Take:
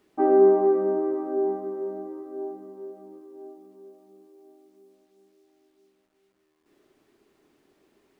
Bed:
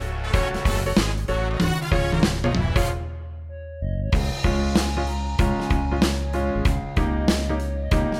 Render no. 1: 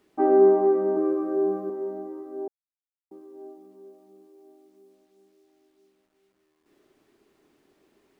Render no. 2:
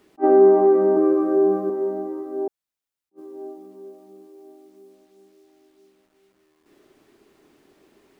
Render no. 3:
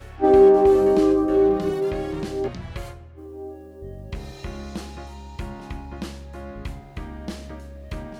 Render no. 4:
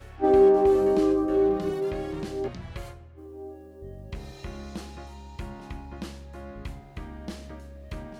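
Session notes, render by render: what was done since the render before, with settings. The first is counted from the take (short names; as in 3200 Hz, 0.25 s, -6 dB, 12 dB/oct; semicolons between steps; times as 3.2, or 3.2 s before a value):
0.96–1.7 comb 5.9 ms, depth 97%; 2.48–3.11 mute
in parallel at +2 dB: limiter -18 dBFS, peak gain reduction 9.5 dB; on the sum: attack slew limiter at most 530 dB/s
add bed -13 dB
gain -4.5 dB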